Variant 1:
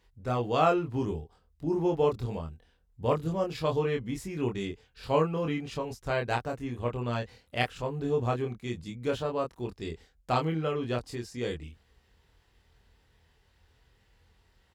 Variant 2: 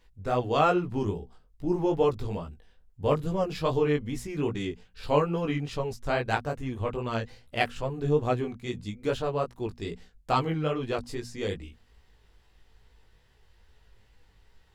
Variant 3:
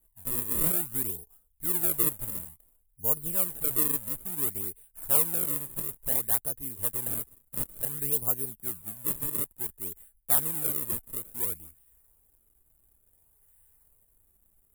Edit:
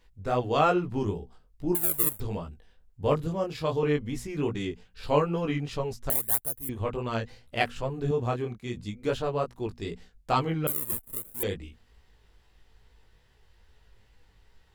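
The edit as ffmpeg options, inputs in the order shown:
-filter_complex "[2:a]asplit=3[a][b][c];[0:a]asplit=2[d][e];[1:a]asplit=6[f][g][h][i][j][k];[f]atrim=end=1.752[l];[a]atrim=start=1.748:end=2.202[m];[g]atrim=start=2.198:end=3.272[n];[d]atrim=start=3.268:end=3.832[o];[h]atrim=start=3.828:end=6.102[p];[b]atrim=start=6.098:end=6.692[q];[i]atrim=start=6.688:end=8.112[r];[e]atrim=start=8.108:end=8.772[s];[j]atrim=start=8.768:end=10.672[t];[c]atrim=start=10.668:end=11.432[u];[k]atrim=start=11.428[v];[l][m]acrossfade=d=0.004:c1=hsin:c2=hsin[w];[w][n]acrossfade=d=0.004:c1=hsin:c2=hsin[x];[x][o]acrossfade=d=0.004:c1=hsin:c2=hsin[y];[y][p]acrossfade=d=0.004:c1=hsin:c2=hsin[z];[z][q]acrossfade=d=0.004:c1=hsin:c2=hsin[aa];[aa][r]acrossfade=d=0.004:c1=hsin:c2=hsin[ab];[ab][s]acrossfade=d=0.004:c1=hsin:c2=hsin[ac];[ac][t]acrossfade=d=0.004:c1=hsin:c2=hsin[ad];[ad][u]acrossfade=d=0.004:c1=hsin:c2=hsin[ae];[ae][v]acrossfade=d=0.004:c1=hsin:c2=hsin"

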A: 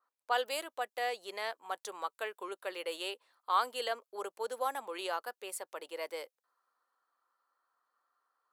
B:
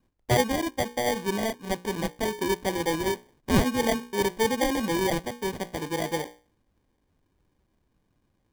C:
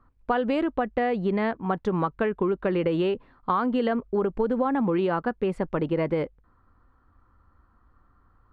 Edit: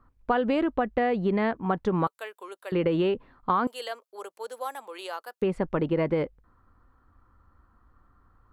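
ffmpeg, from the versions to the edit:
-filter_complex "[0:a]asplit=2[a][b];[2:a]asplit=3[c][d][e];[c]atrim=end=2.072[f];[a]atrim=start=2.068:end=2.722[g];[d]atrim=start=2.718:end=3.672[h];[b]atrim=start=3.668:end=5.422[i];[e]atrim=start=5.418[j];[f][g]acrossfade=d=0.004:c1=hsin:c2=hsin[k];[k][h]acrossfade=d=0.004:c1=hsin:c2=hsin[l];[l][i]acrossfade=d=0.004:c1=hsin:c2=hsin[m];[m][j]acrossfade=d=0.004:c1=hsin:c2=hsin"

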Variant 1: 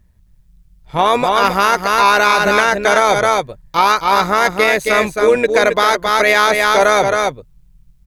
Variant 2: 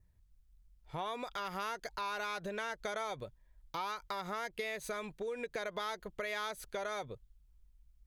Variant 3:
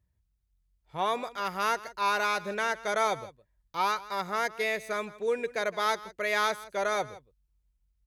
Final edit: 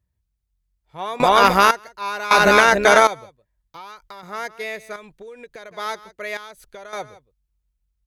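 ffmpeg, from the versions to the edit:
-filter_complex "[0:a]asplit=2[a][b];[1:a]asplit=3[c][d][e];[2:a]asplit=6[f][g][h][i][j][k];[f]atrim=end=1.202[l];[a]atrim=start=1.198:end=1.712[m];[g]atrim=start=1.708:end=2.312[n];[b]atrim=start=2.308:end=3.072[o];[h]atrim=start=3.068:end=3.762[p];[c]atrim=start=3.758:end=4.232[q];[i]atrim=start=4.228:end=4.962[r];[d]atrim=start=4.958:end=5.712[s];[j]atrim=start=5.708:end=6.372[t];[e]atrim=start=6.368:end=6.932[u];[k]atrim=start=6.928[v];[l][m]acrossfade=d=0.004:c1=hsin:c2=hsin[w];[w][n]acrossfade=d=0.004:c1=hsin:c2=hsin[x];[x][o]acrossfade=d=0.004:c1=hsin:c2=hsin[y];[y][p]acrossfade=d=0.004:c1=hsin:c2=hsin[z];[z][q]acrossfade=d=0.004:c1=hsin:c2=hsin[aa];[aa][r]acrossfade=d=0.004:c1=hsin:c2=hsin[ab];[ab][s]acrossfade=d=0.004:c1=hsin:c2=hsin[ac];[ac][t]acrossfade=d=0.004:c1=hsin:c2=hsin[ad];[ad][u]acrossfade=d=0.004:c1=hsin:c2=hsin[ae];[ae][v]acrossfade=d=0.004:c1=hsin:c2=hsin"

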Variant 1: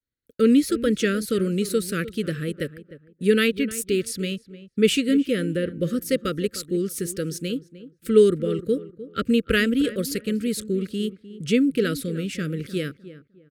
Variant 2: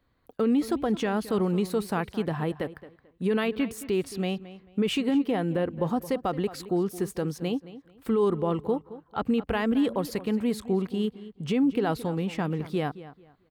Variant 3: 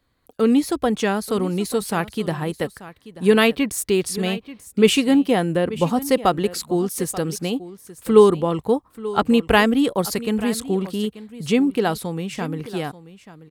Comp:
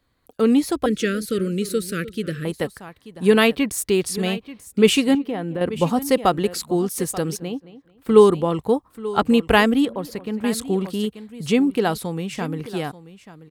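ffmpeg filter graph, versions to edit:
-filter_complex "[1:a]asplit=3[a][b][c];[2:a]asplit=5[d][e][f][g][h];[d]atrim=end=0.862[i];[0:a]atrim=start=0.858:end=2.452[j];[e]atrim=start=2.448:end=5.152[k];[a]atrim=start=5.148:end=5.612[l];[f]atrim=start=5.608:end=7.372[m];[b]atrim=start=7.368:end=8.092[n];[g]atrim=start=8.088:end=9.852[o];[c]atrim=start=9.848:end=10.442[p];[h]atrim=start=10.438[q];[i][j]acrossfade=d=0.004:c1=hsin:c2=hsin[r];[r][k]acrossfade=d=0.004:c1=hsin:c2=hsin[s];[s][l]acrossfade=d=0.004:c1=hsin:c2=hsin[t];[t][m]acrossfade=d=0.004:c1=hsin:c2=hsin[u];[u][n]acrossfade=d=0.004:c1=hsin:c2=hsin[v];[v][o]acrossfade=d=0.004:c1=hsin:c2=hsin[w];[w][p]acrossfade=d=0.004:c1=hsin:c2=hsin[x];[x][q]acrossfade=d=0.004:c1=hsin:c2=hsin"

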